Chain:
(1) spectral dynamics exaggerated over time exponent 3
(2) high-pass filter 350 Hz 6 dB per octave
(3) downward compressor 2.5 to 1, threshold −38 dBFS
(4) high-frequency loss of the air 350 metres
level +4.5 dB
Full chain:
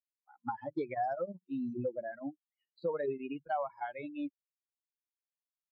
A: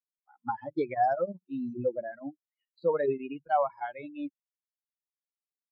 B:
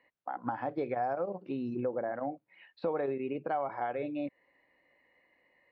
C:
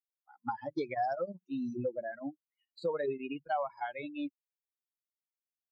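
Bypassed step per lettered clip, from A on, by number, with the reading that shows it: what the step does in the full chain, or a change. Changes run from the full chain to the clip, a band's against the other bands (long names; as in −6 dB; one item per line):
3, average gain reduction 3.5 dB
1, change in momentary loudness spread −1 LU
4, 2 kHz band +2.5 dB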